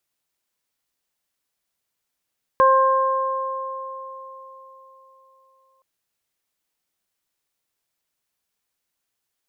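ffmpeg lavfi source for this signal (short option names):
-f lavfi -i "aevalsrc='0.168*pow(10,-3*t/3.84)*sin(2*PI*530*t)+0.251*pow(10,-3*t/3.91)*sin(2*PI*1060*t)+0.0447*pow(10,-3*t/1.9)*sin(2*PI*1590*t)':d=3.22:s=44100"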